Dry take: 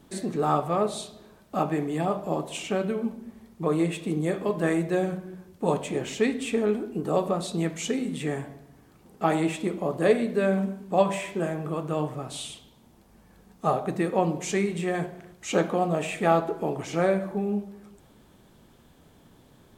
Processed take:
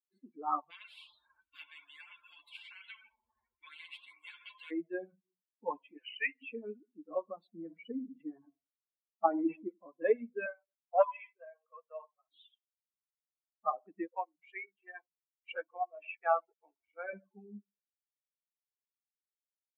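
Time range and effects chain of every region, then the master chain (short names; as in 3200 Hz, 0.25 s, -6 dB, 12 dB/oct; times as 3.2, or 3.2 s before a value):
0.7–4.71 LFO notch saw up 1.4 Hz 580–4300 Hz + spectral compressor 10:1
5.97–6.42 brick-wall FIR low-pass 3100 Hz + tilt +4.5 dB/oct
7.47–9.69 LPF 1400 Hz + transient shaper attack +3 dB, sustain +9 dB
10.46–12.3 steep high-pass 440 Hz 48 dB/oct + Doppler distortion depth 0.15 ms
14.07–17.13 weighting filter A + backlash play -32.5 dBFS + bands offset in time highs, lows 0.1 s, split 210 Hz
whole clip: per-bin expansion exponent 3; elliptic band-pass 300–2600 Hz, stop band 40 dB; bell 380 Hz -9.5 dB 0.25 oct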